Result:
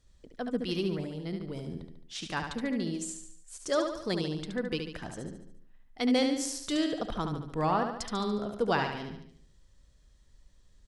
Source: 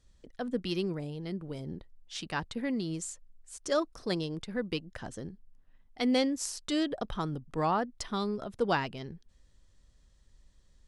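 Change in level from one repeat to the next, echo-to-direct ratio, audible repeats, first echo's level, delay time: -6.0 dB, -4.5 dB, 5, -6.0 dB, 72 ms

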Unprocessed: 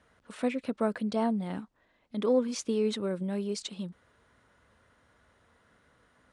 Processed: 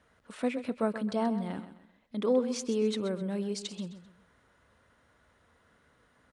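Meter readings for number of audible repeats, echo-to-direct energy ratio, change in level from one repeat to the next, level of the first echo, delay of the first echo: 3, -11.5 dB, -9.5 dB, -12.0 dB, 130 ms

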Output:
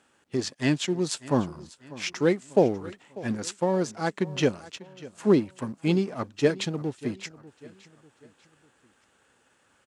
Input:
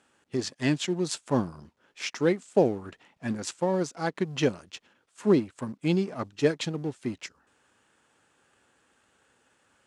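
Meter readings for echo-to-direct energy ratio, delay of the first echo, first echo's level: -18.0 dB, 594 ms, -19.0 dB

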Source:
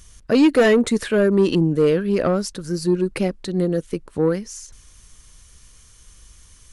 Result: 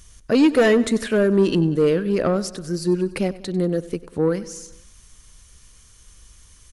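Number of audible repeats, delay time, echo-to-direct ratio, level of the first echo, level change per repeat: 4, 96 ms, -16.0 dB, -18.0 dB, -4.5 dB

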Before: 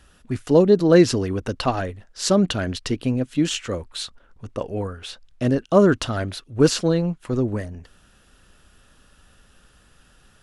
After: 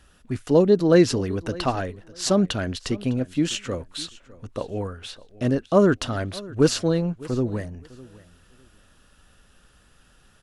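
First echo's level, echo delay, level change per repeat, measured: -20.5 dB, 605 ms, -14.0 dB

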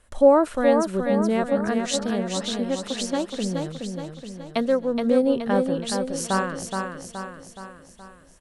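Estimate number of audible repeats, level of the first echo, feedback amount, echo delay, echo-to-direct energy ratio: 6, -5.0 dB, 52%, 422 ms, -3.5 dB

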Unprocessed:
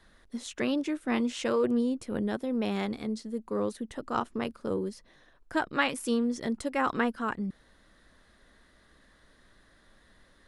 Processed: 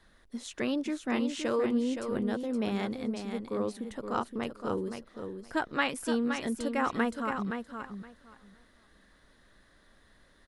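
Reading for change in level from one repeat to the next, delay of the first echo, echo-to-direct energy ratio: -15.5 dB, 519 ms, -7.0 dB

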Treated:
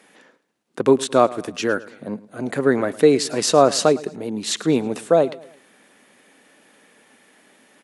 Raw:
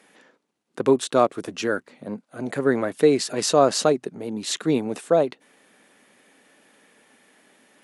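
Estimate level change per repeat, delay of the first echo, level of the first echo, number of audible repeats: -7.5 dB, 109 ms, -19.5 dB, 3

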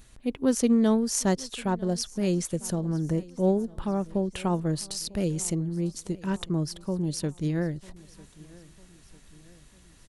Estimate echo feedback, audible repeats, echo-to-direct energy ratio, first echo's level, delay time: 50%, 3, -21.0 dB, -22.0 dB, 949 ms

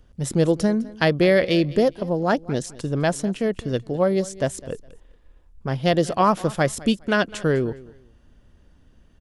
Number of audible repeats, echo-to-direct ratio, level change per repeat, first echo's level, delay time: 2, -20.0 dB, -13.0 dB, -20.0 dB, 206 ms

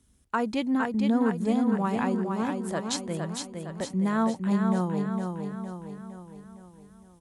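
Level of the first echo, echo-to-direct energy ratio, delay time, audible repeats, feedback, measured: -5.0 dB, -3.5 dB, 460 ms, 6, 51%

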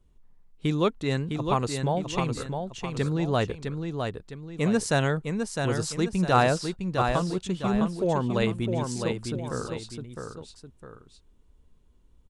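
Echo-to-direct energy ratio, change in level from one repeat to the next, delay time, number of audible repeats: -5.0 dB, -7.5 dB, 658 ms, 2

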